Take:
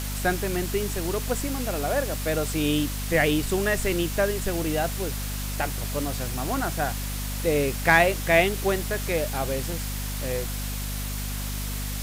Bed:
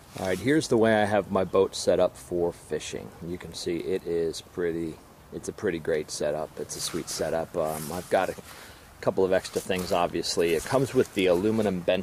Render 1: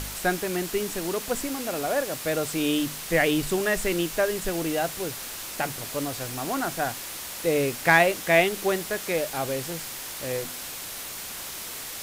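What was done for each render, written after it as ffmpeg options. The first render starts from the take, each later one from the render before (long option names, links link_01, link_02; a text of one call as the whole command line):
ffmpeg -i in.wav -af "bandreject=frequency=50:width_type=h:width=4,bandreject=frequency=100:width_type=h:width=4,bandreject=frequency=150:width_type=h:width=4,bandreject=frequency=200:width_type=h:width=4,bandreject=frequency=250:width_type=h:width=4" out.wav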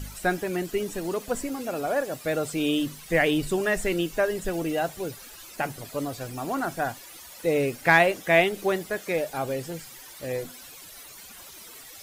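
ffmpeg -i in.wav -af "afftdn=noise_reduction=14:noise_floor=-37" out.wav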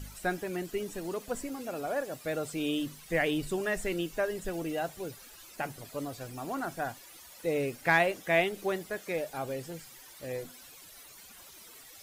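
ffmpeg -i in.wav -af "volume=-6.5dB" out.wav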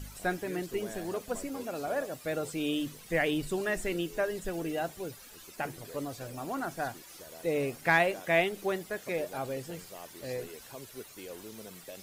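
ffmpeg -i in.wav -i bed.wav -filter_complex "[1:a]volume=-22.5dB[link_01];[0:a][link_01]amix=inputs=2:normalize=0" out.wav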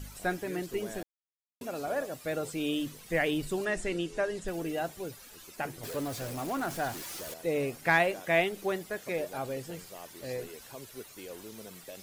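ffmpeg -i in.wav -filter_complex "[0:a]asettb=1/sr,asplit=3[link_01][link_02][link_03];[link_01]atrim=end=3.654[link_04];[link_02]atrim=start=3.65:end=4.48,asetpts=PTS-STARTPTS,afade=type=in:duration=0.004:curve=qsin,afade=type=out:start_time=0.826:duration=0.004:curve=qsin,lowpass=frequency=9500:width=0.5412,lowpass=frequency=9500:width=1.3066[link_05];[link_03]atrim=start=4.476[link_06];[link_04][link_05]acrossfade=duration=0.004:curve1=hsin:curve2=qsin[link_07];[link_07][link_06]acrossfade=duration=0.004:curve1=qsin:curve2=hsin,asettb=1/sr,asplit=3[link_08][link_09][link_10];[link_08]atrim=end=5.834[link_11];[link_09]atrim=start=5.83:end=7.34,asetpts=PTS-STARTPTS,afade=type=in:duration=0.004:curve=qsin,afade=type=out:start_time=1.506:duration=0.004:curve=qsin,aeval=exprs='val(0)+0.5*0.0126*sgn(val(0))':channel_layout=same[link_12];[link_10]atrim=start=7.336[link_13];[link_11][link_12]acrossfade=duration=0.004:curve1=hsin:curve2=qsin[link_14];[link_14][link_13]acrossfade=duration=0.004:curve1=qsin:curve2=hsin,asplit=3[link_15][link_16][link_17];[link_15]atrim=end=1.03,asetpts=PTS-STARTPTS,afade=type=out:start_time=1.026:duration=0.004:curve=hsin[link_18];[link_16]atrim=start=1.03:end=1.61,asetpts=PTS-STARTPTS,volume=0[link_19];[link_17]atrim=start=1.61,asetpts=PTS-STARTPTS,afade=type=in:duration=0.004:curve=hsin[link_20];[link_18][link_19][link_20]concat=n=3:v=0:a=1" out.wav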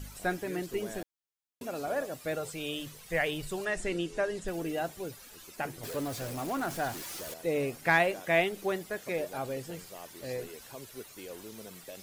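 ffmpeg -i in.wav -filter_complex "[0:a]asettb=1/sr,asplit=3[link_01][link_02][link_03];[link_01]atrim=end=2.354[link_04];[link_02]atrim=start=2.35:end=3.8,asetpts=PTS-STARTPTS,afade=type=in:duration=0.004:curve=qsin,afade=type=out:start_time=1.446:duration=0.004:curve=qsin,equalizer=frequency=270:width_type=o:width=0.77:gain=-10.5[link_05];[link_03]atrim=start=3.796[link_06];[link_04][link_05]acrossfade=duration=0.004:curve1=hsin:curve2=qsin[link_07];[link_07][link_06]acrossfade=duration=0.004:curve1=qsin:curve2=hsin" out.wav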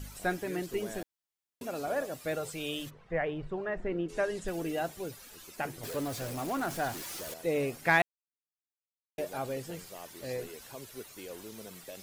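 ffmpeg -i in.wav -filter_complex "[0:a]asplit=3[link_01][link_02][link_03];[link_01]afade=type=out:start_time=2.89:duration=0.02[link_04];[link_02]lowpass=1400,afade=type=in:start_time=2.89:duration=0.02,afade=type=out:start_time=4.08:duration=0.02[link_05];[link_03]afade=type=in:start_time=4.08:duration=0.02[link_06];[link_04][link_05][link_06]amix=inputs=3:normalize=0,asplit=3[link_07][link_08][link_09];[link_07]atrim=end=8.02,asetpts=PTS-STARTPTS,afade=type=out:start_time=8.016:duration=0.004:curve=hsin[link_10];[link_08]atrim=start=8.02:end=9.18,asetpts=PTS-STARTPTS,volume=0[link_11];[link_09]atrim=start=9.18,asetpts=PTS-STARTPTS,afade=type=in:duration=0.004:curve=hsin[link_12];[link_10][link_11][link_12]concat=n=3:v=0:a=1" out.wav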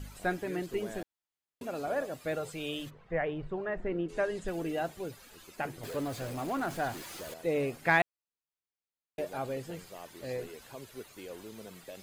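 ffmpeg -i in.wav -af "highshelf=frequency=5600:gain=-7.5,bandreject=frequency=5600:width=16" out.wav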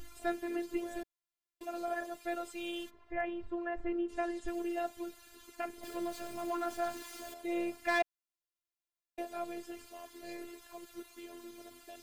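ffmpeg -i in.wav -filter_complex "[0:a]acrossover=split=810|2700[link_01][link_02][link_03];[link_02]asoftclip=type=hard:threshold=-26.5dB[link_04];[link_01][link_04][link_03]amix=inputs=3:normalize=0,afftfilt=real='hypot(re,im)*cos(PI*b)':imag='0':win_size=512:overlap=0.75" out.wav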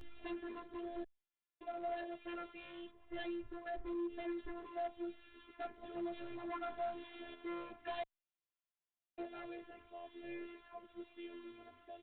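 ffmpeg -i in.wav -filter_complex "[0:a]aresample=8000,asoftclip=type=hard:threshold=-35.5dB,aresample=44100,asplit=2[link_01][link_02];[link_02]adelay=11.5,afreqshift=-0.99[link_03];[link_01][link_03]amix=inputs=2:normalize=1" out.wav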